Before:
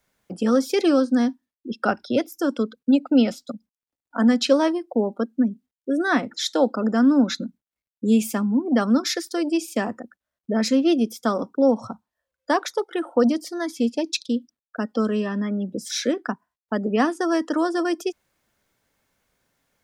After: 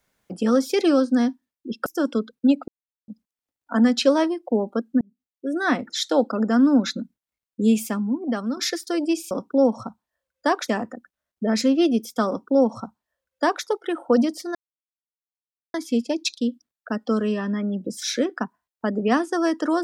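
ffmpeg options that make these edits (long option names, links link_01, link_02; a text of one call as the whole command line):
ffmpeg -i in.wav -filter_complex "[0:a]asplit=9[link_01][link_02][link_03][link_04][link_05][link_06][link_07][link_08][link_09];[link_01]atrim=end=1.862[link_10];[link_02]atrim=start=2.298:end=3.12,asetpts=PTS-STARTPTS,afade=type=out:start_time=0.818:duration=0.004:curve=hsin[link_11];[link_03]atrim=start=3.12:end=3.52,asetpts=PTS-STARTPTS,volume=0[link_12];[link_04]atrim=start=3.52:end=5.45,asetpts=PTS-STARTPTS,afade=type=in:duration=0.004:curve=hsin,afade=type=out:start_time=1.926:duration=0.004:curve=hsin[link_13];[link_05]atrim=start=5.45:end=9.01,asetpts=PTS-STARTPTS,afade=type=in:duration=0.75,afade=type=out:start_time=2.66:duration=0.9:silence=0.354813[link_14];[link_06]atrim=start=9.01:end=9.752,asetpts=PTS-STARTPTS,afade=type=in:duration=0.004:curve=hsin:silence=0.354813[link_15];[link_07]atrim=start=11.348:end=12.722[link_16];[link_08]atrim=start=9.748:end=13.62,asetpts=PTS-STARTPTS,afade=type=out:start_time=3.868:duration=0.004:curve=hsin,apad=pad_dur=1.19[link_17];[link_09]atrim=start=13.62,asetpts=PTS-STARTPTS,afade=type=in:duration=0.004:curve=hsin[link_18];[link_11][link_12][link_13][link_14][link_15]concat=n=5:v=0:a=1[link_19];[link_10][link_19]acrossfade=duration=0.004:curve1=hsin:curve2=hsin[link_20];[link_20][link_16]acrossfade=duration=0.004:curve1=hsin:curve2=hsin[link_21];[link_17][link_18]concat=n=2:v=0:a=1[link_22];[link_21][link_22]acrossfade=duration=0.004:curve1=hsin:curve2=hsin" out.wav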